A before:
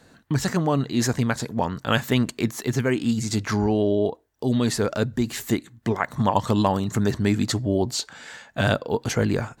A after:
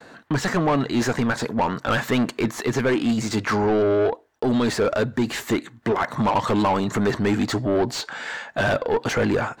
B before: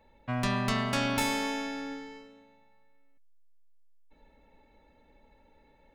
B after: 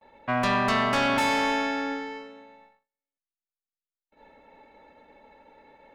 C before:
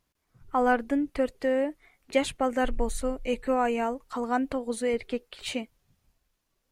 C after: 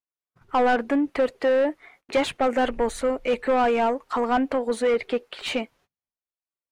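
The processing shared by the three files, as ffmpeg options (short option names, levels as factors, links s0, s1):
-filter_complex "[0:a]asplit=2[s0][s1];[s1]highpass=f=720:p=1,volume=20,asoftclip=type=tanh:threshold=0.531[s2];[s0][s2]amix=inputs=2:normalize=0,lowpass=f=1500:p=1,volume=0.501,agate=range=0.02:threshold=0.00316:ratio=16:detection=peak,volume=0.562"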